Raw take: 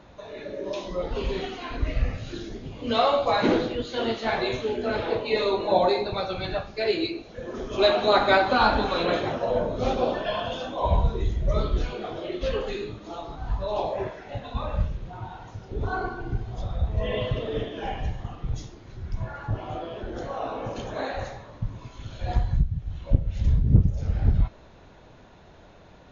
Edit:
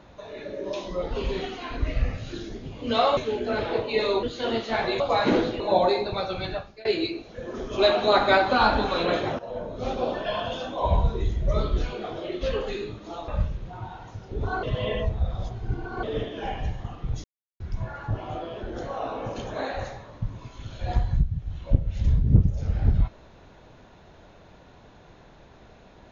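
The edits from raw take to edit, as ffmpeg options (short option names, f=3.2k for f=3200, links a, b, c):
-filter_complex "[0:a]asplit=12[a][b][c][d][e][f][g][h][i][j][k][l];[a]atrim=end=3.172[m];[b]atrim=start=4.538:end=5.602[n];[c]atrim=start=3.768:end=4.542[o];[d]atrim=start=3.168:end=3.772[p];[e]atrim=start=5.598:end=6.85,asetpts=PTS-STARTPTS,afade=t=out:st=0.842:d=0.41:silence=0.0668344[q];[f]atrim=start=6.85:end=9.39,asetpts=PTS-STARTPTS,afade=t=in:d=0.004:c=hsin:silence=0.0668344,afade=t=out:st=2.536:d=0.004:c=hsin:silence=0.223872[r];[g]atrim=start=9.39:end=13.282,asetpts=PTS-STARTPTS,afade=t=in:d=0.98:silence=0.223872[s];[h]atrim=start=14.678:end=16.032[t];[i]atrim=start=16.028:end=17.432,asetpts=PTS-STARTPTS,areverse[u];[j]atrim=start=17.428:end=18.64,asetpts=PTS-STARTPTS,afade=t=out:st=1.208:d=0.004:c=hsin[v];[k]atrim=start=18.64:end=19,asetpts=PTS-STARTPTS,volume=0[w];[l]atrim=start=19,asetpts=PTS-STARTPTS,afade=t=in:d=0.004:c=hsin[x];[m][n]acrossfade=d=0.004:c1=hsin:c2=hsin[y];[y][o]acrossfade=d=0.004:c1=hsin:c2=hsin[z];[z][p]acrossfade=d=0.004:c1=hsin:c2=hsin[aa];[q][r][s]concat=n=3:v=0:a=1[ab];[aa][ab]acrossfade=d=0.004:c1=hsin:c2=hsin[ac];[ac][t]acrossfade=d=0.004:c1=hsin:c2=hsin[ad];[ad][u]acrossfade=d=0.004:c1=hsin:c2=hsin[ae];[v][w][x]concat=n=3:v=0:a=1[af];[ae][af]acrossfade=d=0.004:c1=hsin:c2=hsin"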